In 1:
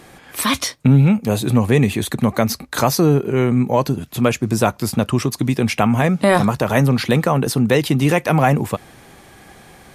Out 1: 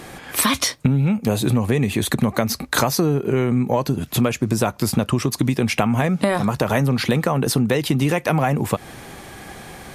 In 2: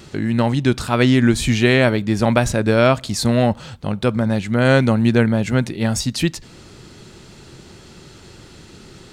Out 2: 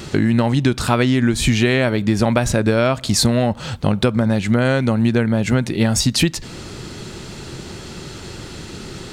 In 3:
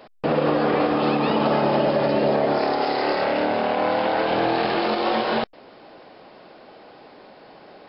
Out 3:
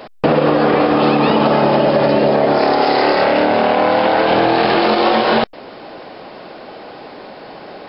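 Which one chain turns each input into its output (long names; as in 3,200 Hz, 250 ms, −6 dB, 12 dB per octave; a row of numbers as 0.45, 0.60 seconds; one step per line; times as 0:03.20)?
downward compressor 10 to 1, threshold −21 dBFS
normalise the peak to −2 dBFS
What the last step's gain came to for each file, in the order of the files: +6.0, +9.0, +12.0 decibels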